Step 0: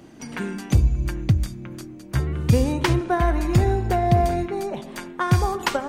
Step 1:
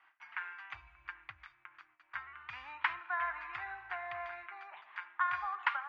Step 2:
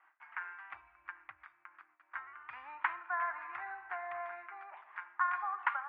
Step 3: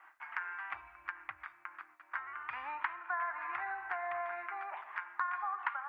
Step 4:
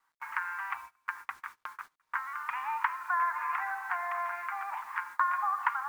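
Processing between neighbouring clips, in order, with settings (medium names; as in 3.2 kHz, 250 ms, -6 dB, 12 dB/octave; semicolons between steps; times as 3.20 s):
inverse Chebyshev high-pass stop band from 530 Hz, stop band 40 dB; gate with hold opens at -48 dBFS; low-pass 2.3 kHz 24 dB/octave; trim -4 dB
three-band isolator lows -17 dB, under 240 Hz, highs -23 dB, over 2.1 kHz; trim +1.5 dB
compression 3:1, threshold -45 dBFS, peak gain reduction 14 dB; trim +8.5 dB
resonant low shelf 700 Hz -9.5 dB, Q 3; bit crusher 10-bit; gate -47 dBFS, range -23 dB; trim +2.5 dB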